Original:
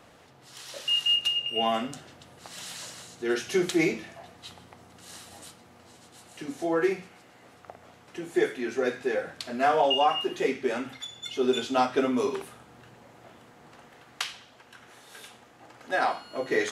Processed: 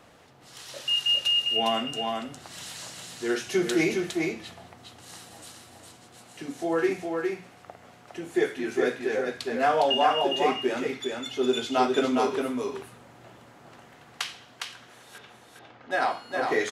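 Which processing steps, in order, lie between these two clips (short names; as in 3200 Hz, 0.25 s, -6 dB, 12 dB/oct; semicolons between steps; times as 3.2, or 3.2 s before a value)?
15.18–15.91 air absorption 220 m; echo 0.409 s -4 dB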